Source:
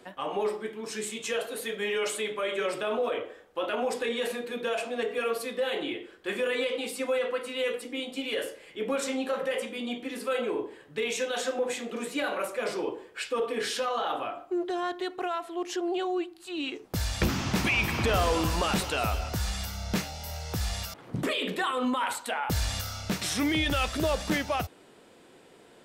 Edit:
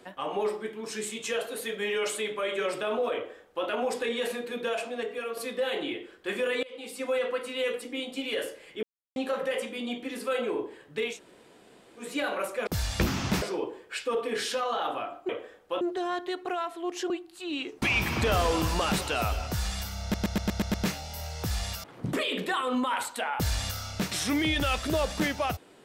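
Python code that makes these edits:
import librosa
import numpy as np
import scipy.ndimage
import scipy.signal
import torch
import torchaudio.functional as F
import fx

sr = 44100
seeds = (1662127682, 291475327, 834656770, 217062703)

y = fx.edit(x, sr, fx.duplicate(start_s=3.15, length_s=0.52, to_s=14.54),
    fx.fade_out_to(start_s=4.66, length_s=0.71, floor_db=-7.0),
    fx.fade_in_from(start_s=6.63, length_s=0.53, floor_db=-22.5),
    fx.silence(start_s=8.83, length_s=0.33),
    fx.room_tone_fill(start_s=11.12, length_s=0.91, crossfade_s=0.16),
    fx.cut(start_s=15.83, length_s=0.34),
    fx.move(start_s=16.89, length_s=0.75, to_s=12.67),
    fx.stutter(start_s=19.84, slice_s=0.12, count=7), tone=tone)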